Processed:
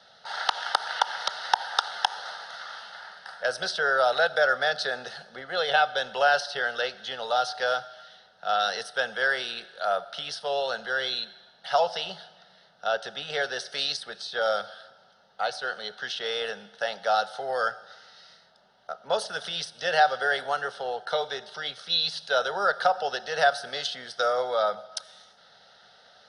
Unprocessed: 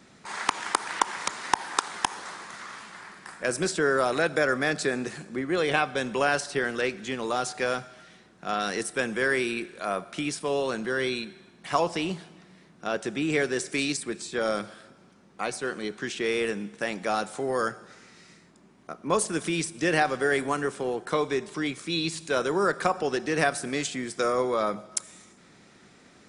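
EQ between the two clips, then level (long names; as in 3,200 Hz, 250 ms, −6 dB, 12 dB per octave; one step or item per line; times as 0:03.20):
three-way crossover with the lows and the highs turned down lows −20 dB, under 570 Hz, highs −23 dB, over 6,800 Hz
parametric band 1,900 Hz −10 dB 0.51 octaves
phaser with its sweep stopped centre 1,600 Hz, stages 8
+8.5 dB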